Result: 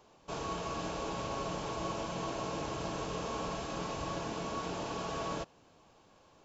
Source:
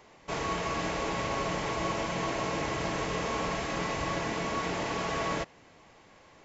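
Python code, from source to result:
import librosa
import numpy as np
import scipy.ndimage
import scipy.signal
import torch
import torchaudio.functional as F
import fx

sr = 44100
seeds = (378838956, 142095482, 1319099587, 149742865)

y = fx.peak_eq(x, sr, hz=2000.0, db=-14.0, octaves=0.36)
y = y * librosa.db_to_amplitude(-5.0)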